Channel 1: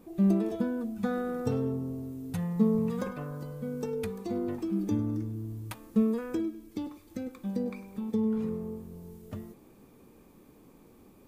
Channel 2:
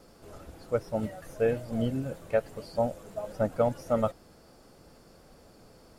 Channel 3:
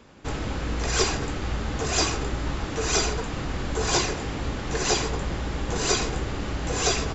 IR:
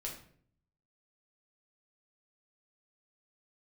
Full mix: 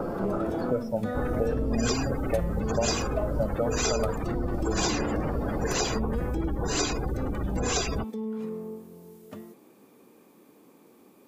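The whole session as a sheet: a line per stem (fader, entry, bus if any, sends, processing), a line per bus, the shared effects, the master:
+2.5 dB, 0.00 s, no bus, no send, HPF 240 Hz 12 dB/oct; limiter -29 dBFS, peak gain reduction 11 dB
0.0 dB, 0.00 s, bus A, send -10 dB, three-band squash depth 100%
+0.5 dB, 0.90 s, bus A, no send, dry
bus A: 0.0 dB, spectral gate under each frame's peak -20 dB strong; compressor 4:1, threshold -24 dBFS, peak gain reduction 6.5 dB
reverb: on, RT60 0.55 s, pre-delay 5 ms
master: dry

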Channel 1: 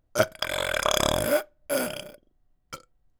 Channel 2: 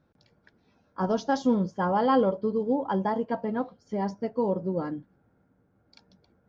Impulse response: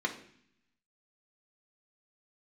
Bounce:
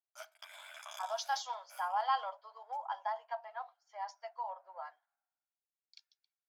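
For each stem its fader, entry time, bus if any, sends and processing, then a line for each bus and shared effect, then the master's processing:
-18.0 dB, 0.00 s, send -21.5 dB, ensemble effect
+0.5 dB, 0.00 s, no send, three-band expander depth 100%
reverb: on, RT60 0.60 s, pre-delay 3 ms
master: Chebyshev high-pass 670 Hz, order 6; compressor 1.5:1, threshold -45 dBFS, peak gain reduction 10 dB

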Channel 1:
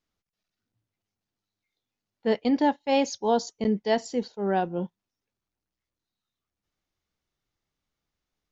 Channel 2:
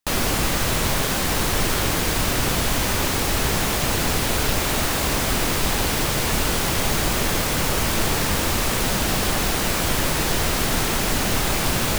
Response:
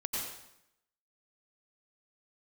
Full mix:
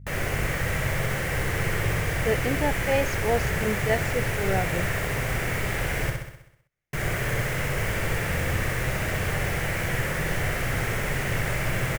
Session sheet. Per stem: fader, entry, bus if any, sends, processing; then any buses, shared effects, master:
-2.5 dB, 0.00 s, no send, no echo send, dry
-8.0 dB, 0.00 s, muted 6.1–6.93, no send, echo send -4 dB, high shelf 4900 Hz -6.5 dB; notch 2500 Hz, Q 28; hum 50 Hz, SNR 16 dB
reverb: off
echo: feedback echo 64 ms, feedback 57%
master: graphic EQ 125/250/500/1000/2000/4000 Hz +10/-9/+5/-6/+11/-10 dB

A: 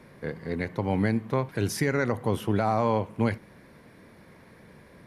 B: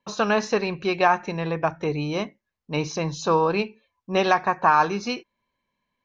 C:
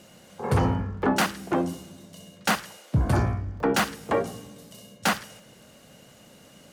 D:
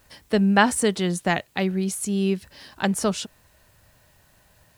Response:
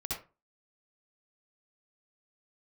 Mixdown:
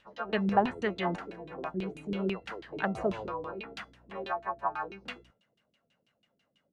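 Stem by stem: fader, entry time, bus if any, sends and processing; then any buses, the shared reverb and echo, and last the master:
-11.0 dB, 0.25 s, no send, elliptic band-pass 330–1400 Hz; hum 60 Hz, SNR 13 dB
-7.0 dB, 0.00 s, no send, frequency quantiser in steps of 2 st; harmonic-percussive split harmonic -6 dB; low shelf 150 Hz -11.5 dB
-2.5 dB, 0.00 s, no send, pre-emphasis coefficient 0.9
0.0 dB, 0.00 s, muted 1.16–1.74, no send, low shelf 350 Hz -9.5 dB; notch 5300 Hz, Q 6.9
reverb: off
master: bell 160 Hz +3 dB 1.9 oct; LFO low-pass saw down 6.1 Hz 260–3500 Hz; resonator 680 Hz, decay 0.23 s, harmonics all, mix 60%

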